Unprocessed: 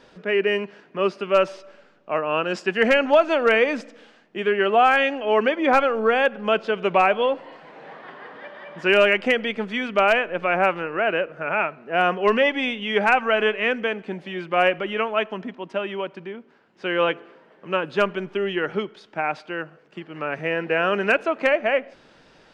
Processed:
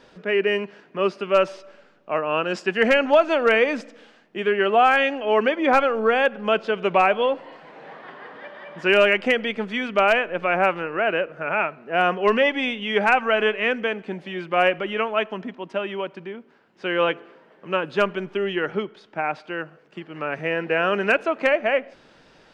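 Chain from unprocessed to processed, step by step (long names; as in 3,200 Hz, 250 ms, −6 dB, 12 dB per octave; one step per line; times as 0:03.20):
0:18.70–0:19.44: high-shelf EQ 3,900 Hz −6 dB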